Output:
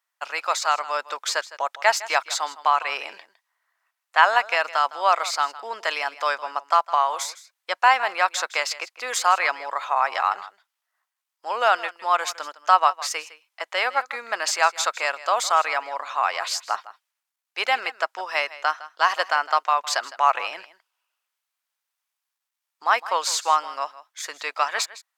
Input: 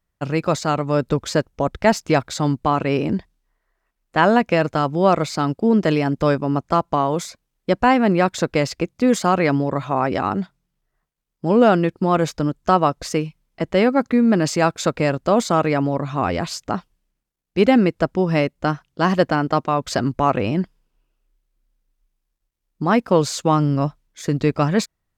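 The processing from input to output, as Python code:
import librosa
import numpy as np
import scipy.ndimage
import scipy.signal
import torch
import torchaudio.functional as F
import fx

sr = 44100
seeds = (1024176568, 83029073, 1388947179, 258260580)

p1 = scipy.signal.sosfilt(scipy.signal.butter(4, 840.0, 'highpass', fs=sr, output='sos'), x)
p2 = p1 + fx.echo_single(p1, sr, ms=159, db=-17.0, dry=0)
y = p2 * 10.0 ** (3.0 / 20.0)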